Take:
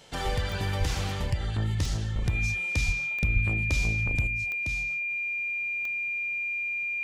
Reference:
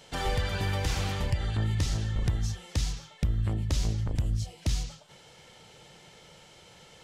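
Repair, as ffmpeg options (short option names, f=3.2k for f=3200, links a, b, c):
-filter_complex "[0:a]adeclick=t=4,bandreject=f=2.4k:w=30,asplit=3[a][b][c];[a]afade=t=out:st=0.79:d=0.02[d];[b]highpass=f=140:w=0.5412,highpass=f=140:w=1.3066,afade=t=in:st=0.79:d=0.02,afade=t=out:st=0.91:d=0.02[e];[c]afade=t=in:st=0.91:d=0.02[f];[d][e][f]amix=inputs=3:normalize=0,asplit=3[g][h][i];[g]afade=t=out:st=2.85:d=0.02[j];[h]highpass=f=140:w=0.5412,highpass=f=140:w=1.3066,afade=t=in:st=2.85:d=0.02,afade=t=out:st=2.97:d=0.02[k];[i]afade=t=in:st=2.97:d=0.02[l];[j][k][l]amix=inputs=3:normalize=0,asplit=3[m][n][o];[m]afade=t=out:st=3.33:d=0.02[p];[n]highpass=f=140:w=0.5412,highpass=f=140:w=1.3066,afade=t=in:st=3.33:d=0.02,afade=t=out:st=3.45:d=0.02[q];[o]afade=t=in:st=3.45:d=0.02[r];[p][q][r]amix=inputs=3:normalize=0,asetnsamples=n=441:p=0,asendcmd='4.27 volume volume 8.5dB',volume=0dB"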